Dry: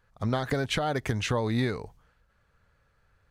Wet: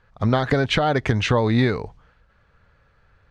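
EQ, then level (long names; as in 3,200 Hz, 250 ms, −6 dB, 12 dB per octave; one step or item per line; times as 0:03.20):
low-pass filter 4,500 Hz 12 dB per octave
+8.5 dB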